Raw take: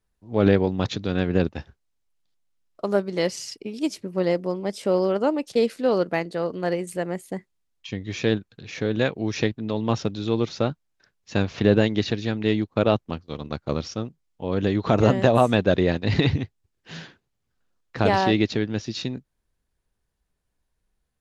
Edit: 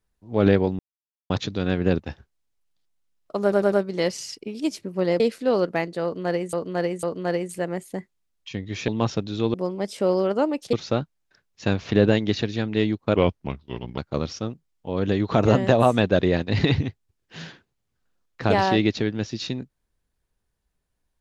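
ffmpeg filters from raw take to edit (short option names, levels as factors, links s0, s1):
-filter_complex "[0:a]asplit=13[s0][s1][s2][s3][s4][s5][s6][s7][s8][s9][s10][s11][s12];[s0]atrim=end=0.79,asetpts=PTS-STARTPTS,afade=t=out:st=0.786:d=0.004:c=hsin,apad=pad_dur=0.51[s13];[s1]atrim=start=0.79:end=3.012,asetpts=PTS-STARTPTS,afade=t=in:d=0.004:c=hsin[s14];[s2]atrim=start=2.908:end=3.012[s15];[s3]atrim=start=2.908:end=3.012[s16];[s4]atrim=start=2.908:end=4.392[s17];[s5]atrim=start=5.578:end=6.912[s18];[s6]atrim=start=6.408:end=6.912[s19];[s7]atrim=start=6.408:end=8.262[s20];[s8]atrim=start=9.758:end=10.422[s21];[s9]atrim=start=4.388:end=5.582[s22];[s10]atrim=start=10.418:end=12.854[s23];[s11]atrim=start=12.85:end=13.53,asetpts=PTS-STARTPTS,asetrate=36603,aresample=44100,atrim=end_sample=36130,asetpts=PTS-STARTPTS[s24];[s12]atrim=start=13.526[s25];[s13][s14]concat=n=2:v=0:a=1[s26];[s26][s15]acrossfade=d=0.004:c1=hsin:c2=hsin[s27];[s27][s16]acrossfade=d=0.004:c1=hsin:c2=hsin[s28];[s28][s17]acrossfade=d=0.004:c1=hsin:c2=hsin[s29];[s29][s18]acrossfade=d=0.004:c1=hsin:c2=hsin[s30];[s30][s19]acrossfade=d=0.004:c1=hsin:c2=hsin[s31];[s31][s20]acrossfade=d=0.004:c1=hsin:c2=hsin[s32];[s32][s21]acrossfade=d=0.004:c1=hsin:c2=hsin[s33];[s33][s22]acrossfade=d=0.004:c1=hsin:c2=hsin[s34];[s34][s23]acrossfade=d=0.004:c1=hsin:c2=hsin[s35];[s35][s24]acrossfade=d=0.004:c1=hsin:c2=hsin[s36];[s36][s25]acrossfade=d=0.004:c1=hsin:c2=hsin"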